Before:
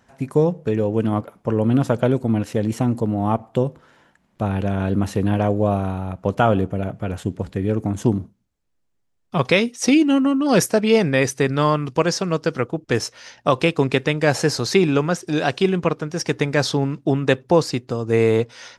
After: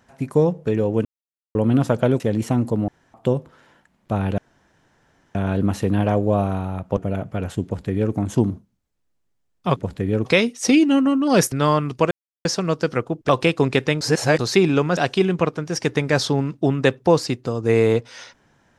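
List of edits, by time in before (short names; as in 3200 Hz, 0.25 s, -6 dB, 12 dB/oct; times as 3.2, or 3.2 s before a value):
1.05–1.55 mute
2.2–2.5 cut
3.18–3.44 room tone
4.68 insert room tone 0.97 s
6.3–6.65 cut
7.32–7.81 copy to 9.44
10.71–11.49 cut
12.08 insert silence 0.34 s
12.92–13.48 cut
14.2–14.58 reverse
15.16–15.41 cut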